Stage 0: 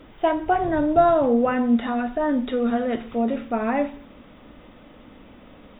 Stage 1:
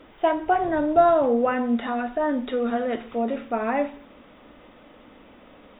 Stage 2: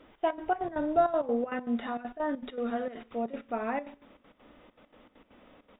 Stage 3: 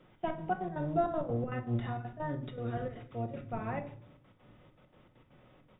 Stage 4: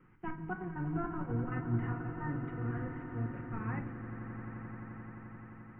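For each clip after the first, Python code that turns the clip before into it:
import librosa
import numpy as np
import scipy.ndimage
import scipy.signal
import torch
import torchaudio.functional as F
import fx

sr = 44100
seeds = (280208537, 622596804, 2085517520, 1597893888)

y1 = fx.bass_treble(x, sr, bass_db=-8, treble_db=-4)
y2 = fx.step_gate(y1, sr, bpm=198, pattern='xx.x.xx.x.xx', floor_db=-12.0, edge_ms=4.5)
y2 = F.gain(torch.from_numpy(y2), -7.0).numpy()
y3 = fx.octave_divider(y2, sr, octaves=1, level_db=3.0)
y3 = fx.room_shoebox(y3, sr, seeds[0], volume_m3=550.0, walls='furnished', distance_m=0.98)
y3 = F.gain(torch.from_numpy(y3), -6.5).numpy()
y4 = scipy.signal.sosfilt(scipy.signal.butter(2, 2700.0, 'lowpass', fs=sr, output='sos'), y3)
y4 = fx.fixed_phaser(y4, sr, hz=1500.0, stages=4)
y4 = fx.echo_swell(y4, sr, ms=87, loudest=8, wet_db=-14.5)
y4 = F.gain(torch.from_numpy(y4), 1.0).numpy()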